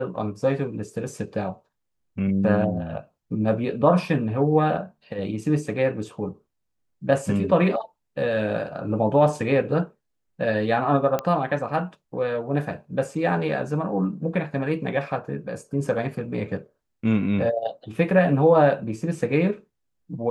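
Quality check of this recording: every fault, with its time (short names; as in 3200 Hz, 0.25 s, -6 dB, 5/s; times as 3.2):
11.19 pop -12 dBFS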